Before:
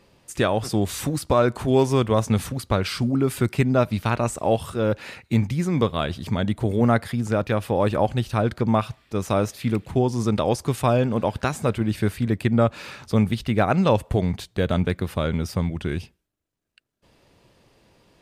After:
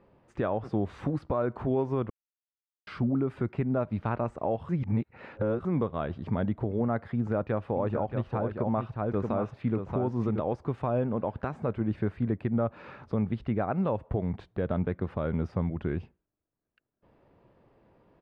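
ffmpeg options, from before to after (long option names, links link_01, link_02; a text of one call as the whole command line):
ffmpeg -i in.wav -filter_complex "[0:a]asplit=3[link_01][link_02][link_03];[link_01]afade=type=out:start_time=7.75:duration=0.02[link_04];[link_02]aecho=1:1:628:0.501,afade=type=in:start_time=7.75:duration=0.02,afade=type=out:start_time=10.54:duration=0.02[link_05];[link_03]afade=type=in:start_time=10.54:duration=0.02[link_06];[link_04][link_05][link_06]amix=inputs=3:normalize=0,asplit=5[link_07][link_08][link_09][link_10][link_11];[link_07]atrim=end=2.1,asetpts=PTS-STARTPTS,afade=type=out:start_time=2.096:duration=0.004:curve=hsin[link_12];[link_08]atrim=start=2.1:end=2.87,asetpts=PTS-STARTPTS,volume=0[link_13];[link_09]atrim=start=2.87:end=4.692,asetpts=PTS-STARTPTS,afade=type=in:duration=0.004:curve=hsin[link_14];[link_10]atrim=start=4.688:end=5.652,asetpts=PTS-STARTPTS,areverse[link_15];[link_11]atrim=start=5.648[link_16];[link_12][link_13][link_14]concat=n=3:v=0:a=1[link_17];[link_17][link_15]acrossfade=duration=0.004:curve1=hsin:curve2=hsin[link_18];[link_18][link_16]acrossfade=duration=0.004:curve1=hsin:curve2=hsin,lowpass=1300,lowshelf=frequency=140:gain=-4,alimiter=limit=-17dB:level=0:latency=1:release=247,volume=-2dB" out.wav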